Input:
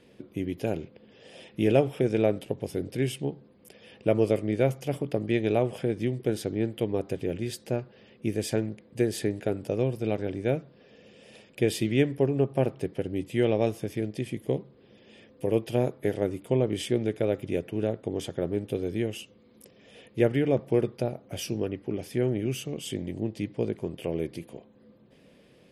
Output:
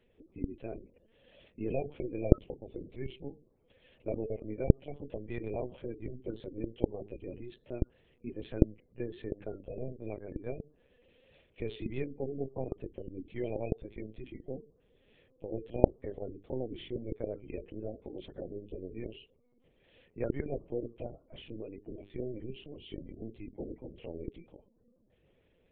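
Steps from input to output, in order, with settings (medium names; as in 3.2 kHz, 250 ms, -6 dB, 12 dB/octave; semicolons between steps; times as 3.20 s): hum notches 50/100/150/200/250/300/350/400/450 Hz; spectral gate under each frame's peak -25 dB strong; 14.31–16.37 s: dynamic bell 2.6 kHz, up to -5 dB, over -48 dBFS, Q 0.83; LPC vocoder at 8 kHz pitch kept; trim -11.5 dB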